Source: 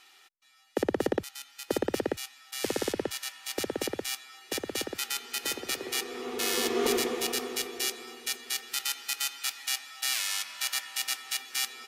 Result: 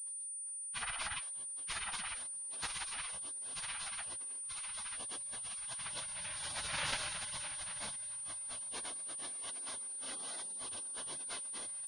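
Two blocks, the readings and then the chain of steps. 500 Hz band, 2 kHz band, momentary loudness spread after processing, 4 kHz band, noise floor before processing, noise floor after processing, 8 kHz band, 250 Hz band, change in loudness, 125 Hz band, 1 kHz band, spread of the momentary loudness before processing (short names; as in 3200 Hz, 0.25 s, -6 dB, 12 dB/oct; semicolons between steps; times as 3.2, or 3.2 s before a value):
-23.5 dB, -9.0 dB, 3 LU, -12.0 dB, -58 dBFS, -44 dBFS, -3.5 dB, -24.0 dB, -8.0 dB, -9.0 dB, -8.5 dB, 8 LU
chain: phase scrambler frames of 50 ms; notches 60/120/180/240/300/360/420 Hz; rotary speaker horn 7.5 Hz, later 1.2 Hz, at 6.68; spectral gate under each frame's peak -25 dB weak; pulse-width modulation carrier 9300 Hz; gain +9.5 dB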